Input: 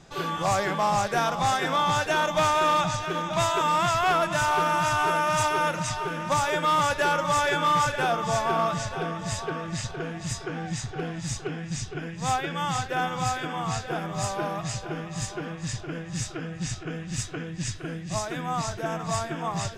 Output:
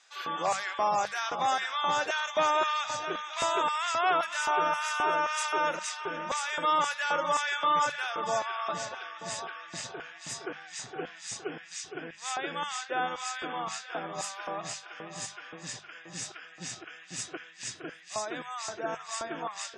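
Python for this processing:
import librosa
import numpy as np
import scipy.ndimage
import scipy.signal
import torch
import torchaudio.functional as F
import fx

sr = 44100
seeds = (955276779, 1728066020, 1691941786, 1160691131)

y = fx.filter_lfo_highpass(x, sr, shape='square', hz=1.9, low_hz=320.0, high_hz=1500.0, q=0.83)
y = fx.hum_notches(y, sr, base_hz=50, count=4)
y = fx.spec_gate(y, sr, threshold_db=-30, keep='strong')
y = y * 10.0 ** (-3.0 / 20.0)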